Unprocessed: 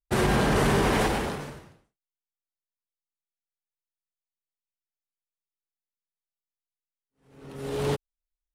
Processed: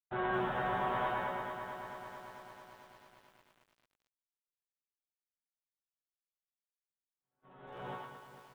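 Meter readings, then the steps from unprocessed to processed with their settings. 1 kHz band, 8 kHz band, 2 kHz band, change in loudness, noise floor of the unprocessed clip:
−5.0 dB, −28.0 dB, −8.5 dB, −12.0 dB, below −85 dBFS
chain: flat-topped bell 990 Hz +9 dB
resonators tuned to a chord B2 fifth, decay 0.25 s
feedback echo with a high-pass in the loop 108 ms, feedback 34%, high-pass 350 Hz, level −3.5 dB
noise gate −58 dBFS, range −18 dB
downsampling to 8,000 Hz
feedback echo at a low word length 222 ms, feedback 80%, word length 9 bits, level −9 dB
level −6 dB

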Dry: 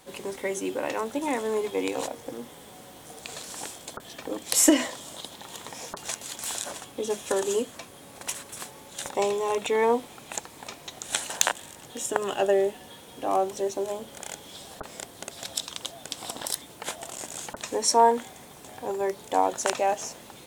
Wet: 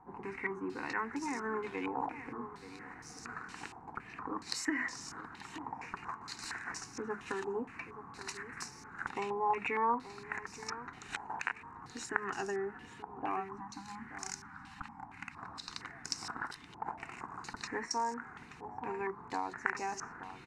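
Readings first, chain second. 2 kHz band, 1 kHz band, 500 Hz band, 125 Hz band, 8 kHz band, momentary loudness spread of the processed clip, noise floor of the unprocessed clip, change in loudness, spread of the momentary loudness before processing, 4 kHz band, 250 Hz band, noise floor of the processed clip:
−2.5 dB, −8.0 dB, −14.5 dB, −4.5 dB, −17.5 dB, 12 LU, −48 dBFS, −11.5 dB, 17 LU, −12.5 dB, −10.5 dB, −53 dBFS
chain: phaser with its sweep stopped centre 1,400 Hz, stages 4
downward compressor 2.5 to 1, threshold −33 dBFS, peak gain reduction 11 dB
time-frequency box erased 0:13.40–0:15.37, 320–750 Hz
on a send: repeating echo 879 ms, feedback 16%, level −13 dB
on the sum: low-pass on a step sequencer 4.3 Hz 850–5,500 Hz
level −2.5 dB

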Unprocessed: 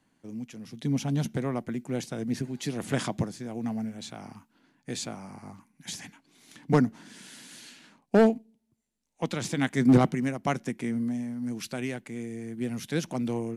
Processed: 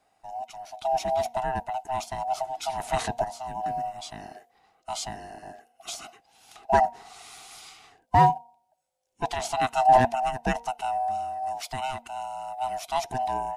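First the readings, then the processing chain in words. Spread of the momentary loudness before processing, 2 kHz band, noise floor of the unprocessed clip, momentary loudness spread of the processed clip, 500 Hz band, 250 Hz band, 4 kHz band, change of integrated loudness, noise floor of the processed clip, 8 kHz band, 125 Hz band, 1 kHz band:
23 LU, +1.5 dB, −74 dBFS, 23 LU, +1.0 dB, −12.0 dB, +2.0 dB, +2.0 dB, −71 dBFS, +1.0 dB, −5.5 dB, +14.5 dB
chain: neighbouring bands swapped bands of 500 Hz
hum removal 234.9 Hz, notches 4
level +1.5 dB

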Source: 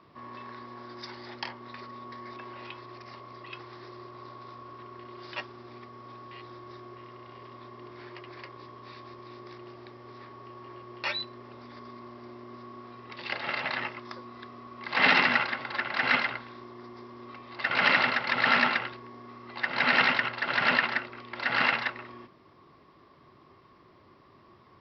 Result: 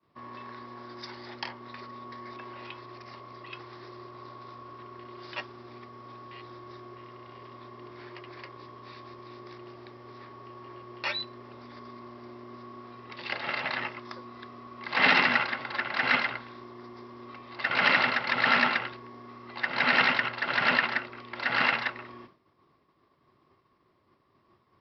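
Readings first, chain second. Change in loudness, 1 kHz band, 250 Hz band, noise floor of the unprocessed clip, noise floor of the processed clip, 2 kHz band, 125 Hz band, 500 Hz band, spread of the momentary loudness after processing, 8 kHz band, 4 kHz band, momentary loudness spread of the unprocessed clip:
0.0 dB, 0.0 dB, 0.0 dB, −58 dBFS, −68 dBFS, 0.0 dB, 0.0 dB, 0.0 dB, 23 LU, can't be measured, 0.0 dB, 23 LU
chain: downward expander −49 dBFS

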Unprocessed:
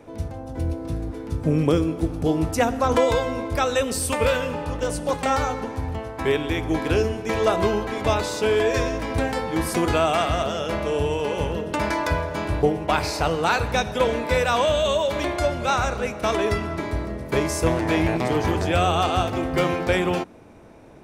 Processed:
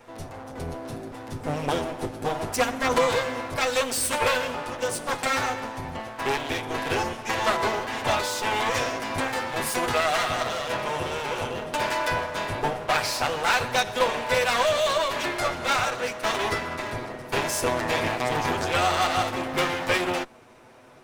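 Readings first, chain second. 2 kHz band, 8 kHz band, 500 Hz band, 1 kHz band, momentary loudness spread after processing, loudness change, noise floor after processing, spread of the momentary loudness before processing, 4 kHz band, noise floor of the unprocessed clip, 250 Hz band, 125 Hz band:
+1.5 dB, +1.5 dB, −5.0 dB, −0.5 dB, 9 LU, −2.5 dB, −40 dBFS, 8 LU, +1.5 dB, −35 dBFS, −8.5 dB, −9.5 dB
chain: lower of the sound and its delayed copy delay 8 ms
low-shelf EQ 440 Hz −10.5 dB
level +2.5 dB

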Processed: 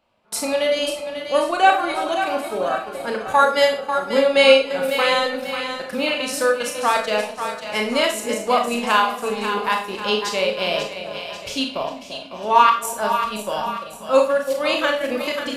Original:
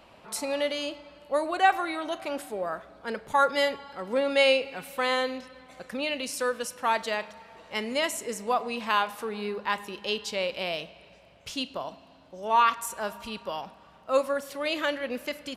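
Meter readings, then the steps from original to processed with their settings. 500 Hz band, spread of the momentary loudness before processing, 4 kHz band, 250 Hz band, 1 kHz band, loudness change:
+9.5 dB, 15 LU, +9.0 dB, +8.0 dB, +8.5 dB, +8.5 dB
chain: echo with a time of its own for lows and highs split 690 Hz, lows 339 ms, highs 541 ms, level −8 dB
noise gate with hold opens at −34 dBFS
transient designer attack 0 dB, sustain −8 dB
notch filter 1,900 Hz, Q 17
four-comb reverb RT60 0.35 s, combs from 26 ms, DRR 2.5 dB
level +6.5 dB

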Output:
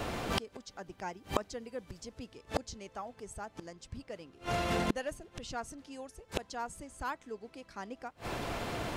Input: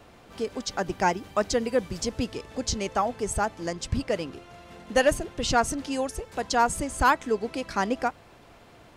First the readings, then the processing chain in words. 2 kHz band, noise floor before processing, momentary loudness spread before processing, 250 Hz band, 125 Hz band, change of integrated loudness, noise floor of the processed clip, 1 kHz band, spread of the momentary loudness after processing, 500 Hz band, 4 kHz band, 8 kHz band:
−11.5 dB, −53 dBFS, 10 LU, −10.5 dB, −6.5 dB, −12.5 dB, −63 dBFS, −12.5 dB, 13 LU, −12.0 dB, −9.0 dB, −14.0 dB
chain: gate with flip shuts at −30 dBFS, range −32 dB
level +15 dB

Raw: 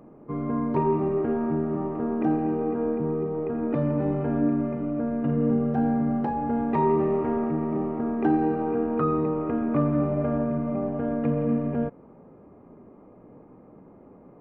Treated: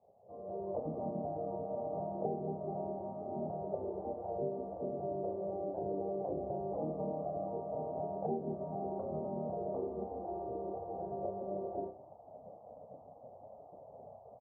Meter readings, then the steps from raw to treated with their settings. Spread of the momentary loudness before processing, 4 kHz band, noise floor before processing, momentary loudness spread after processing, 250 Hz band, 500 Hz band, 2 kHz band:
5 LU, can't be measured, −51 dBFS, 16 LU, −19.5 dB, −10.0 dB, below −35 dB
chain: loose part that buzzes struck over −31 dBFS, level −26 dBFS
parametric band 340 Hz +9.5 dB 0.44 octaves
ambience of single reflections 11 ms −12.5 dB, 42 ms −11.5 dB
gate on every frequency bin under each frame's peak −15 dB weak
flutter between parallel walls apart 5.3 metres, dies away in 0.21 s
downward compressor 10 to 1, threshold −39 dBFS, peak gain reduction 16.5 dB
high-pass filter 110 Hz 12 dB per octave
automatic gain control gain up to 15 dB
elliptic low-pass filter 700 Hz, stop band 70 dB
low-shelf EQ 250 Hz −9.5 dB
level −3.5 dB

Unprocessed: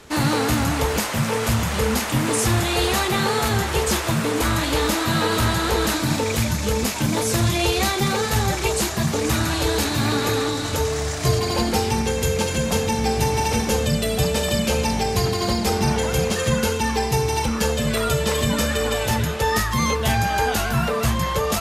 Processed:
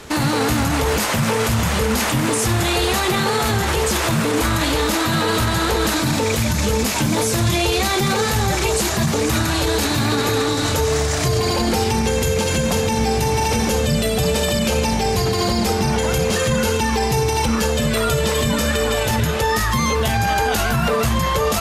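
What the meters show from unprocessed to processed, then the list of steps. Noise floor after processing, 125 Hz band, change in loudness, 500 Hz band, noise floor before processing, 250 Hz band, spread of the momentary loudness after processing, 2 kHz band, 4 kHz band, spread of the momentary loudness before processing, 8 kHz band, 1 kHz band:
−20 dBFS, +2.0 dB, +2.5 dB, +3.0 dB, −25 dBFS, +2.5 dB, 1 LU, +3.0 dB, +2.5 dB, 2 LU, +2.5 dB, +2.5 dB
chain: boost into a limiter +16.5 dB
level −9 dB

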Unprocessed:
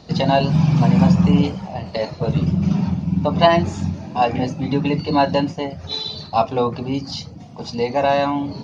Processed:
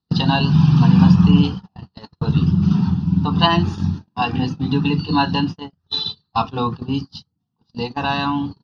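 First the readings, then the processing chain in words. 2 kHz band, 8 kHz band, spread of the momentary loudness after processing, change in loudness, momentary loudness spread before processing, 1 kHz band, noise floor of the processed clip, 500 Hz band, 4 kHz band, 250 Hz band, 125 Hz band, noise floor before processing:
+1.0 dB, can't be measured, 13 LU, +1.0 dB, 11 LU, −2.0 dB, −74 dBFS, −9.5 dB, +3.5 dB, +2.0 dB, +2.5 dB, −37 dBFS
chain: phaser with its sweep stopped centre 2,200 Hz, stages 6
noise gate −27 dBFS, range −39 dB
dynamic equaliser 2,700 Hz, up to +5 dB, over −47 dBFS, Q 3.4
level +3.5 dB

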